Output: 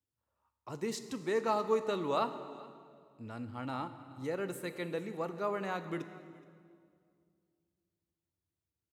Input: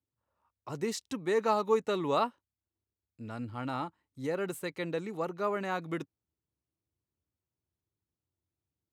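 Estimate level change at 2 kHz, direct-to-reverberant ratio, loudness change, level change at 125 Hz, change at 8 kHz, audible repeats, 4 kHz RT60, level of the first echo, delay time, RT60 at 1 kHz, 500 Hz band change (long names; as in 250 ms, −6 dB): −3.0 dB, 9.5 dB, −3.0 dB, −3.0 dB, −3.0 dB, 1, 1.7 s, −22.0 dB, 422 ms, 1.9 s, −3.0 dB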